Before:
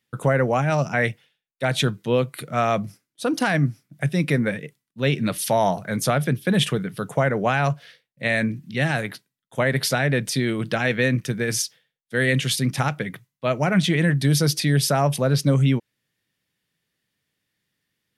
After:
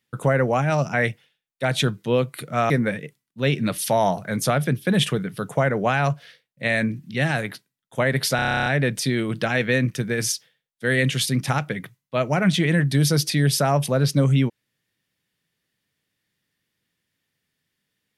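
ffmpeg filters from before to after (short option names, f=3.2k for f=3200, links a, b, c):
-filter_complex "[0:a]asplit=12[a][b][c][d][e][f][g][h][i][j][k][l];[a]atrim=end=2.702[m];[b]atrim=start=4.298:end=9.992[n];[c]atrim=start=9.958:end=9.992[o];[d]atrim=start=9.958:end=9.992[p];[e]atrim=start=9.958:end=9.992[q];[f]atrim=start=9.958:end=9.992[r];[g]atrim=start=9.958:end=9.992[s];[h]atrim=start=9.958:end=9.992[t];[i]atrim=start=9.958:end=9.992[u];[j]atrim=start=9.958:end=9.992[v];[k]atrim=start=9.958:end=9.992[w];[l]atrim=start=9.958[x];[m][n]acrossfade=d=0.004:c1=hsin:c2=hsin[y];[y][o]acrossfade=d=0.004:c1=hsin:c2=hsin[z];[z][p]acrossfade=d=0.004:c1=hsin:c2=hsin[aa];[aa][q]acrossfade=d=0.004:c1=hsin:c2=hsin[ab];[ab][r]acrossfade=d=0.004:c1=hsin:c2=hsin[ac];[ac][s]acrossfade=d=0.004:c1=hsin:c2=hsin[ad];[ad][t]acrossfade=d=0.004:c1=hsin:c2=hsin[ae];[ae][u]acrossfade=d=0.004:c1=hsin:c2=hsin[af];[af][v]acrossfade=d=0.004:c1=hsin:c2=hsin[ag];[ag][w]acrossfade=d=0.004:c1=hsin:c2=hsin[ah];[ah][x]acrossfade=d=0.004:c1=hsin:c2=hsin"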